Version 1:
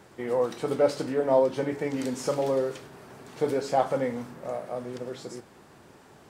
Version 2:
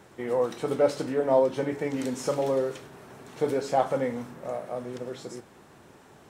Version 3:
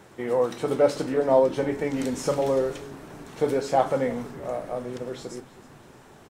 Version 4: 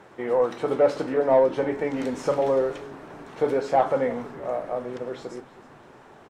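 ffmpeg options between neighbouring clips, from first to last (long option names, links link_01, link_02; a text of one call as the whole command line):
ffmpeg -i in.wav -af "bandreject=frequency=4700:width=13" out.wav
ffmpeg -i in.wav -filter_complex "[0:a]asplit=5[link_01][link_02][link_03][link_04][link_05];[link_02]adelay=319,afreqshift=-120,volume=-19dB[link_06];[link_03]adelay=638,afreqshift=-240,volume=-24.4dB[link_07];[link_04]adelay=957,afreqshift=-360,volume=-29.7dB[link_08];[link_05]adelay=1276,afreqshift=-480,volume=-35.1dB[link_09];[link_01][link_06][link_07][link_08][link_09]amix=inputs=5:normalize=0,volume=2.5dB" out.wav
ffmpeg -i in.wav -filter_complex "[0:a]asplit=2[link_01][link_02];[link_02]highpass=frequency=720:poles=1,volume=11dB,asoftclip=type=tanh:threshold=-7dB[link_03];[link_01][link_03]amix=inputs=2:normalize=0,lowpass=frequency=1200:poles=1,volume=-6dB" out.wav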